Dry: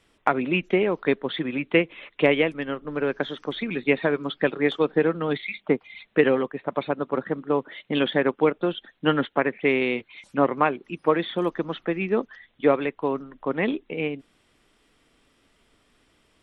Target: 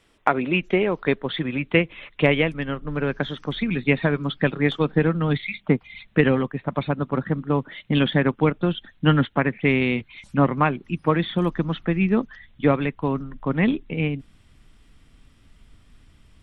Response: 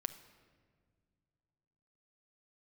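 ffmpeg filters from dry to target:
-af "asubboost=boost=7.5:cutoff=150,volume=2dB"

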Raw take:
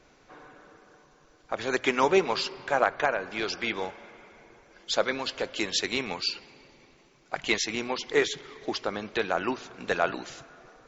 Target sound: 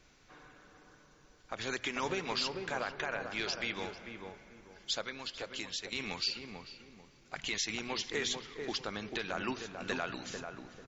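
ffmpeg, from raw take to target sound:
ffmpeg -i in.wav -filter_complex "[0:a]equalizer=frequency=570:width=0.43:gain=-10,asettb=1/sr,asplit=3[link_01][link_02][link_03];[link_01]atrim=end=5.014[link_04];[link_02]atrim=start=5.01:end=5.93,asetpts=PTS-STARTPTS,afade=type=in:duration=0.004:curve=qsin,afade=type=out:start_time=0.916:duration=0.004:curve=qsin,acompressor=threshold=-40dB:ratio=3[link_05];[link_03]atrim=start=5.926[link_06];[link_04][link_05]acrossfade=duration=0.004:curve1=hsin:curve2=qsin[link_07];[link_07][link_06]acrossfade=duration=0.004:curve1=qsin:curve2=hsin,alimiter=limit=-23dB:level=0:latency=1:release=80,asplit=2[link_08][link_09];[link_09]adelay=443,lowpass=frequency=910:poles=1,volume=-4dB,asplit=2[link_10][link_11];[link_11]adelay=443,lowpass=frequency=910:poles=1,volume=0.33,asplit=2[link_12][link_13];[link_13]adelay=443,lowpass=frequency=910:poles=1,volume=0.33,asplit=2[link_14][link_15];[link_15]adelay=443,lowpass=frequency=910:poles=1,volume=0.33[link_16];[link_08][link_10][link_12][link_14][link_16]amix=inputs=5:normalize=0" out.wav

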